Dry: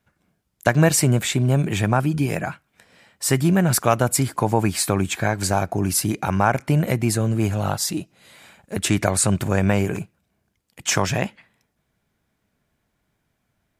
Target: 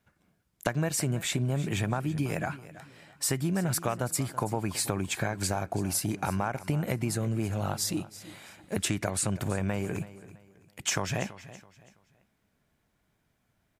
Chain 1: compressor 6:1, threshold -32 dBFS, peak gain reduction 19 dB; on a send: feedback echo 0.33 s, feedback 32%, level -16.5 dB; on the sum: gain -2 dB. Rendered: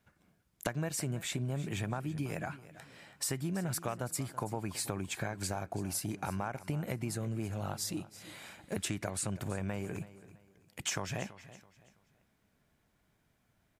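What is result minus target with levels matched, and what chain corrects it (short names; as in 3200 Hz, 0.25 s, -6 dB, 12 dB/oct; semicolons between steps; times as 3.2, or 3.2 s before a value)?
compressor: peak gain reduction +6.5 dB
compressor 6:1, threshold -24 dBFS, peak gain reduction 12.5 dB; on a send: feedback echo 0.33 s, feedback 32%, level -16.5 dB; on the sum: gain -2 dB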